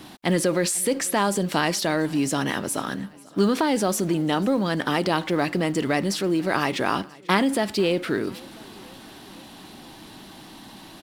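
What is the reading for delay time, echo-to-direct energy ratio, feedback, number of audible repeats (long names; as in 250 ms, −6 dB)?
493 ms, −21.5 dB, 60%, 3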